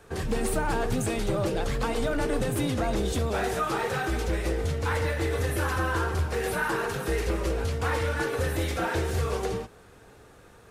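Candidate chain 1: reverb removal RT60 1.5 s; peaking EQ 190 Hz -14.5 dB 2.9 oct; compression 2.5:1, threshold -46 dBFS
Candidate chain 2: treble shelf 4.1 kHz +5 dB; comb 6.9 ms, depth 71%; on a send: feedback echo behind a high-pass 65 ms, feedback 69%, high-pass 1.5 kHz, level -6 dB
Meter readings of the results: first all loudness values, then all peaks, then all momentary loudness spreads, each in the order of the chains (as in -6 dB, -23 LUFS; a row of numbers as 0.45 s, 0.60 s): -44.5 LUFS, -26.0 LUFS; -29.0 dBFS, -12.0 dBFS; 4 LU, 4 LU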